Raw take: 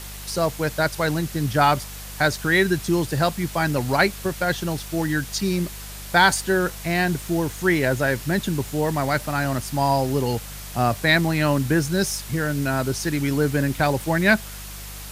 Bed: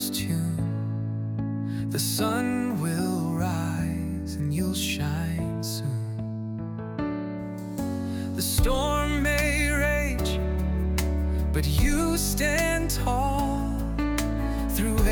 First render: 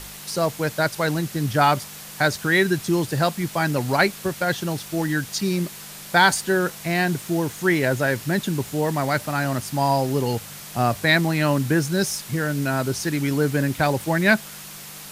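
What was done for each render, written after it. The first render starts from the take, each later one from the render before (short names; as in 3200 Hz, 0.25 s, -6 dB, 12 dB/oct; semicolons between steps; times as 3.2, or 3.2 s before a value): de-hum 50 Hz, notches 2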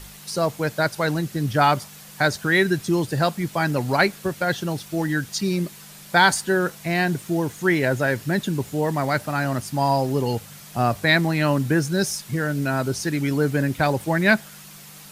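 denoiser 6 dB, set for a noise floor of -39 dBFS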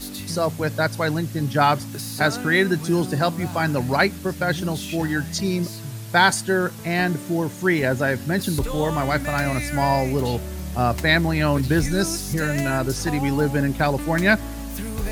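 add bed -5 dB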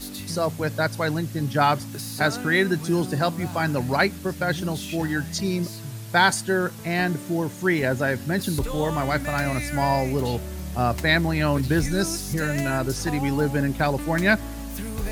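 gain -2 dB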